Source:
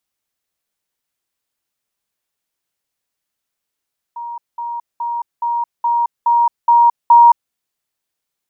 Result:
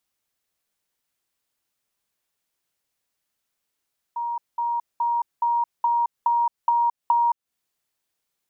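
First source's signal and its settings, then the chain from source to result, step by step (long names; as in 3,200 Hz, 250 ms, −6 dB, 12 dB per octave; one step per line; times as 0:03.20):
level staircase 944 Hz −24.5 dBFS, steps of 3 dB, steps 8, 0.22 s 0.20 s
downward compressor 6 to 1, threshold −20 dBFS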